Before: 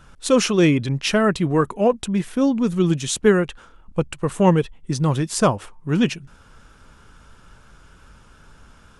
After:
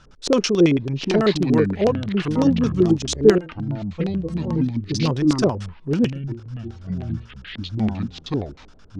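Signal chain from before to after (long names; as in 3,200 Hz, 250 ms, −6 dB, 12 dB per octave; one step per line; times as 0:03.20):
0:03.38–0:04.91: stiff-string resonator 160 Hz, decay 0.25 s, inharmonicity 0.008
auto-filter low-pass square 9.1 Hz 420–5,300 Hz
delay with pitch and tempo change per echo 646 ms, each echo −6 semitones, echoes 2, each echo −6 dB
level −3 dB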